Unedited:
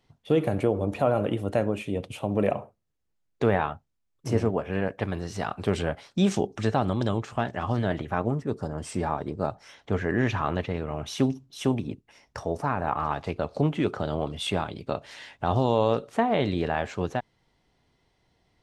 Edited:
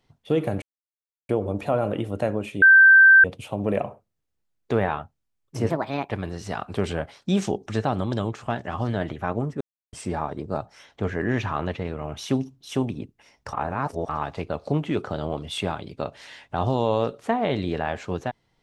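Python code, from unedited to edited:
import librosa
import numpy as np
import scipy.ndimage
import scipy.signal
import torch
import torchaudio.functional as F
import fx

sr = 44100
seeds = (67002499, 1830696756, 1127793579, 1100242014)

y = fx.edit(x, sr, fx.insert_silence(at_s=0.62, length_s=0.67),
    fx.insert_tone(at_s=1.95, length_s=0.62, hz=1560.0, db=-8.5),
    fx.speed_span(start_s=4.41, length_s=0.58, speed=1.46),
    fx.silence(start_s=8.5, length_s=0.32),
    fx.reverse_span(start_s=12.42, length_s=0.56), tone=tone)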